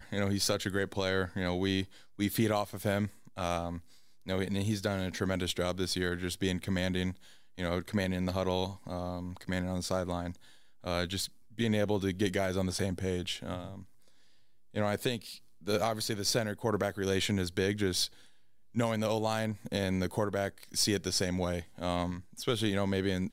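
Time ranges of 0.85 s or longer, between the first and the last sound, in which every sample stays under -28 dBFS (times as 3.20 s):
13.57–14.77 s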